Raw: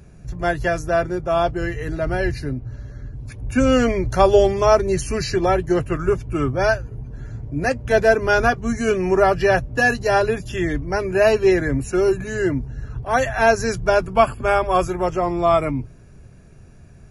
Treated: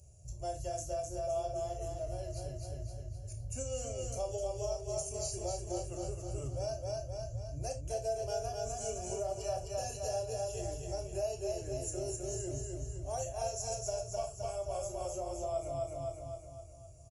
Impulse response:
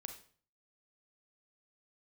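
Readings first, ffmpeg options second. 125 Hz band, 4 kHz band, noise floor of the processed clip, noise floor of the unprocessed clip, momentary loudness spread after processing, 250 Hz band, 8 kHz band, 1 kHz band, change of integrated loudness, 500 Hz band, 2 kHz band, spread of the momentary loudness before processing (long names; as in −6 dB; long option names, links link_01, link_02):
−15.0 dB, −15.5 dB, −49 dBFS, −44 dBFS, 6 LU, −25.5 dB, −4.0 dB, −20.5 dB, −19.0 dB, −18.0 dB, −35.5 dB, 13 LU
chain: -filter_complex "[0:a]firequalizer=gain_entry='entry(110,0);entry(180,-25);entry(590,-1);entry(1000,-19);entry(1800,-29);entry(2900,-4);entry(4200,-2);entry(7300,12);entry(11000,2)':delay=0.05:min_phase=1,aecho=1:1:258|516|774|1032|1290|1548:0.631|0.309|0.151|0.0742|0.0364|0.0178,acompressor=threshold=-26dB:ratio=4,highpass=65,equalizer=frequency=3600:width=3.6:gain=-14,bandreject=frequency=480:width=12[link_01];[1:a]atrim=start_sample=2205,atrim=end_sample=6174,asetrate=66150,aresample=44100[link_02];[link_01][link_02]afir=irnorm=-1:irlink=0"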